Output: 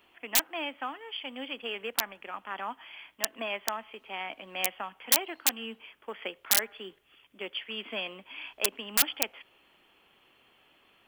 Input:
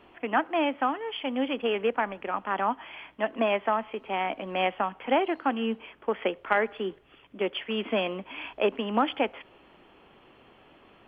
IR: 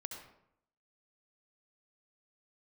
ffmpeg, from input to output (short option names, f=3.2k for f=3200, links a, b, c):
-af "aeval=exprs='(mod(4.73*val(0)+1,2)-1)/4.73':c=same,crystalizer=i=9.5:c=0,volume=-14dB"